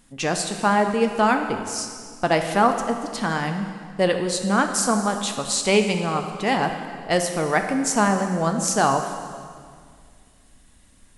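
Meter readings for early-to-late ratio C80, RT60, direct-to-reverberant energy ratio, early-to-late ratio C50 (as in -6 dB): 8.0 dB, 2.0 s, 5.0 dB, 7.0 dB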